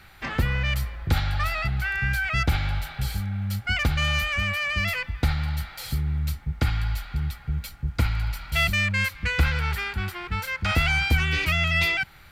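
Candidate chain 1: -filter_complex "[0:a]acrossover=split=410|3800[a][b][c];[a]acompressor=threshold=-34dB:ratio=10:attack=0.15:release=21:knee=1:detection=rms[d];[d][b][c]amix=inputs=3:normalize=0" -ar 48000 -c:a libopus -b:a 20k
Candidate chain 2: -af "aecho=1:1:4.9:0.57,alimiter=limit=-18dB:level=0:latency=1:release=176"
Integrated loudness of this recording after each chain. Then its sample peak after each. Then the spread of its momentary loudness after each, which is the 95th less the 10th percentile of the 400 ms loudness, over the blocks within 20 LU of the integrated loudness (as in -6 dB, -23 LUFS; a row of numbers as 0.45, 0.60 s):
-27.0, -28.5 LUFS; -11.5, -18.0 dBFS; 14, 6 LU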